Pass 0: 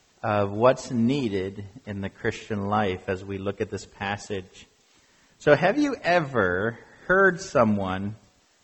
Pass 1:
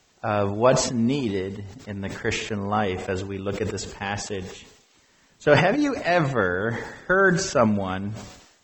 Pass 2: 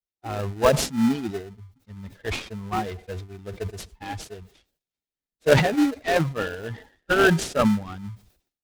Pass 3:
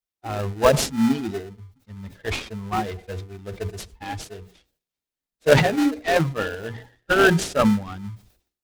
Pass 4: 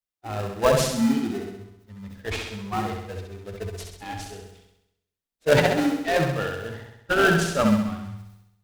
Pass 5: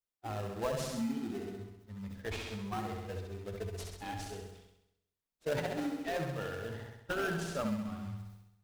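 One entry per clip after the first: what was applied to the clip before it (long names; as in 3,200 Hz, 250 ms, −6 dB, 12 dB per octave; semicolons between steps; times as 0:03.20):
level that may fall only so fast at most 65 dB per second
spectral dynamics exaggerated over time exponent 2; in parallel at −6 dB: sample-rate reduction 1,100 Hz, jitter 0%; on the sum: short delay modulated by noise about 1,300 Hz, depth 0.037 ms; level +1.5 dB
mains-hum notches 60/120/180/240/300/360/420/480 Hz; level +2 dB
flutter between parallel walls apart 11.3 metres, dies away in 0.83 s; level −3.5 dB
in parallel at −10 dB: sample-and-hold swept by an LFO 15×, swing 60% 3 Hz; on the sum: downward compressor 2.5 to 1, threshold −32 dBFS, peak gain reduction 14.5 dB; level −5.5 dB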